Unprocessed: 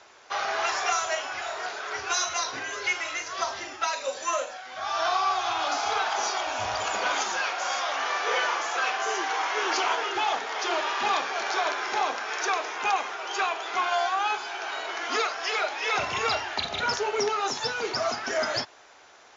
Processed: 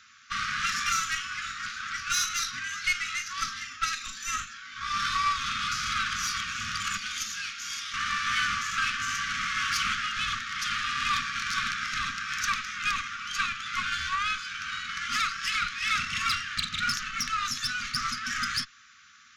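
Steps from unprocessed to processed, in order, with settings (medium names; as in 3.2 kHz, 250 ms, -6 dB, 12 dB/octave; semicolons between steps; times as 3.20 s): 6.97–7.94 s: peaking EQ 950 Hz -13 dB 2 oct; Chebyshev shaper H 6 -19 dB, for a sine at -12 dBFS; brick-wall FIR band-stop 260–1100 Hz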